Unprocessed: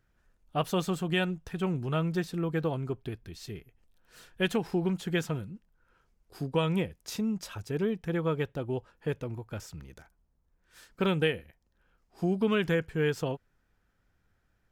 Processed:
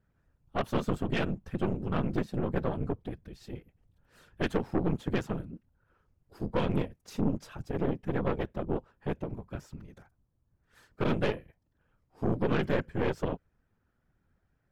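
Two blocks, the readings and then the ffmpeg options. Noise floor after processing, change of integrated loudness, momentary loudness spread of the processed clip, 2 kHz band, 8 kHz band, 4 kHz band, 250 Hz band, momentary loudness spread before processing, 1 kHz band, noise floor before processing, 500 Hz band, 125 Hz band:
-76 dBFS, -1.5 dB, 14 LU, -4.0 dB, -9.5 dB, -7.0 dB, -1.0 dB, 14 LU, +0.5 dB, -73 dBFS, -1.5 dB, -1.0 dB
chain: -af "highshelf=f=2200:g=-11,afftfilt=real='hypot(re,im)*cos(2*PI*random(0))':imag='hypot(re,im)*sin(2*PI*random(1))':win_size=512:overlap=0.75,aeval=exprs='0.106*(cos(1*acos(clip(val(0)/0.106,-1,1)))-cos(1*PI/2))+0.0188*(cos(6*acos(clip(val(0)/0.106,-1,1)))-cos(6*PI/2))':c=same,asoftclip=type=tanh:threshold=0.0944,volume=1.88"

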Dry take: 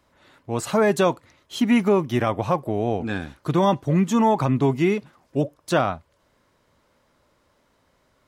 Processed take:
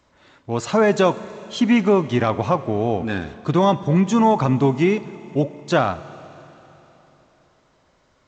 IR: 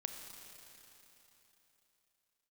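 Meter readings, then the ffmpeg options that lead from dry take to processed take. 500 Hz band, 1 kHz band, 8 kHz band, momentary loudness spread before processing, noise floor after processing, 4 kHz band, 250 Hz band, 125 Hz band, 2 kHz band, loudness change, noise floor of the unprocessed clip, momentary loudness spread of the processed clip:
+2.5 dB, +2.5 dB, -0.5 dB, 11 LU, -61 dBFS, +2.5 dB, +2.5 dB, +2.5 dB, +2.5 dB, +2.5 dB, -65 dBFS, 11 LU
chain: -filter_complex "[0:a]asplit=2[s0][s1];[1:a]atrim=start_sample=2205[s2];[s1][s2]afir=irnorm=-1:irlink=0,volume=0.473[s3];[s0][s3]amix=inputs=2:normalize=0" -ar 16000 -c:a g722

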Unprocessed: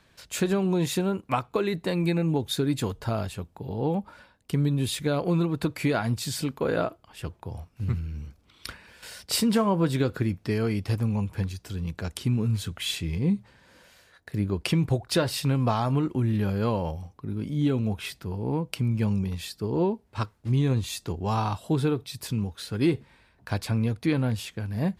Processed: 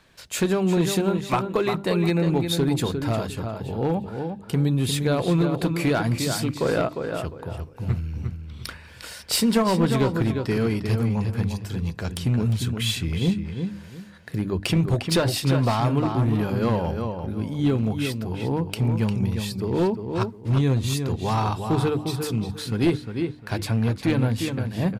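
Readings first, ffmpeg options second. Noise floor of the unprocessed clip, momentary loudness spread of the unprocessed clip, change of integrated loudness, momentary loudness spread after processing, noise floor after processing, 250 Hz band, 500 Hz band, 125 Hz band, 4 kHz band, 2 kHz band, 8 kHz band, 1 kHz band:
-62 dBFS, 10 LU, +3.5 dB, 10 LU, -43 dBFS, +3.5 dB, +4.0 dB, +3.5 dB, +4.0 dB, +4.0 dB, +3.5 dB, +4.0 dB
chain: -filter_complex "[0:a]bandreject=f=50:t=h:w=6,bandreject=f=100:t=h:w=6,bandreject=f=150:t=h:w=6,bandreject=f=200:t=h:w=6,bandreject=f=250:t=h:w=6,bandreject=f=300:t=h:w=6,asplit=2[s0][s1];[s1]adelay=353,lowpass=f=3600:p=1,volume=0.473,asplit=2[s2][s3];[s3]adelay=353,lowpass=f=3600:p=1,volume=0.26,asplit=2[s4][s5];[s5]adelay=353,lowpass=f=3600:p=1,volume=0.26[s6];[s0][s2][s4][s6]amix=inputs=4:normalize=0,aeval=exprs='clip(val(0),-1,0.1)':c=same,volume=1.5"

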